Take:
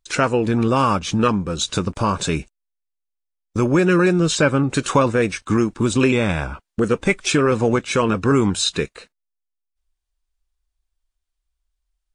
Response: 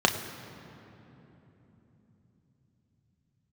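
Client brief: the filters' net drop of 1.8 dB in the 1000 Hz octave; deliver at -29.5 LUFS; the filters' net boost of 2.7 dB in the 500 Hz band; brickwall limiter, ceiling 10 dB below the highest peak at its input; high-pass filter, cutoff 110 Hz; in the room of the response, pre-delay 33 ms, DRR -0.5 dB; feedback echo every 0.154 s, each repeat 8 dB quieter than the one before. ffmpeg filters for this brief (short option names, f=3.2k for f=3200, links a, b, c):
-filter_complex "[0:a]highpass=110,equalizer=f=500:t=o:g=4,equalizer=f=1k:t=o:g=-3,alimiter=limit=-11dB:level=0:latency=1,aecho=1:1:154|308|462|616|770:0.398|0.159|0.0637|0.0255|0.0102,asplit=2[a][b];[1:a]atrim=start_sample=2205,adelay=33[c];[b][c]afir=irnorm=-1:irlink=0,volume=-14.5dB[d];[a][d]amix=inputs=2:normalize=0,volume=-12dB"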